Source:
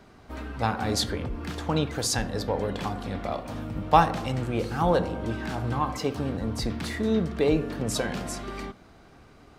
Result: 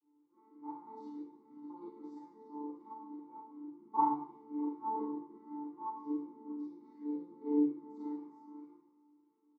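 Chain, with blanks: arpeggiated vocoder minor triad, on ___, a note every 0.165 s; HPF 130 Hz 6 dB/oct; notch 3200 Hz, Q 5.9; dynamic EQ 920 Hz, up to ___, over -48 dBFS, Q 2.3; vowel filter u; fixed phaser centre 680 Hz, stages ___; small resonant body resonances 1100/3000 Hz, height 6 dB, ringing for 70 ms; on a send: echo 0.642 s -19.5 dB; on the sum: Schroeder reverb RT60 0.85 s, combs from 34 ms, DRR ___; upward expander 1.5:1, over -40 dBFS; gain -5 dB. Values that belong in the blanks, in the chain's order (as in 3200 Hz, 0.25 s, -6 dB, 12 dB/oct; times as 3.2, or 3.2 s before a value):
D3, +5 dB, 6, -8 dB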